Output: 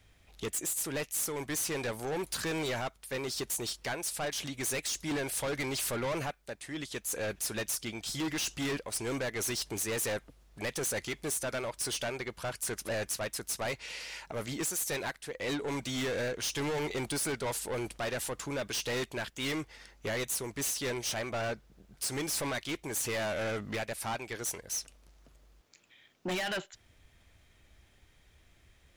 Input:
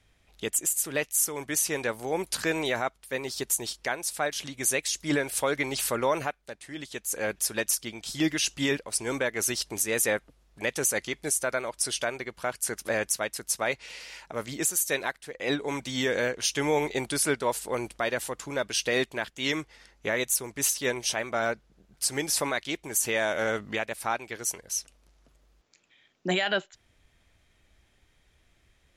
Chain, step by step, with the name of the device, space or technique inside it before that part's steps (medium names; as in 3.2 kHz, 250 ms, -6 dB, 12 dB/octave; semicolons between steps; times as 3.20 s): open-reel tape (saturation -32 dBFS, distortion -6 dB; peaking EQ 84 Hz +3 dB 1.08 oct; white noise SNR 47 dB); trim +1.5 dB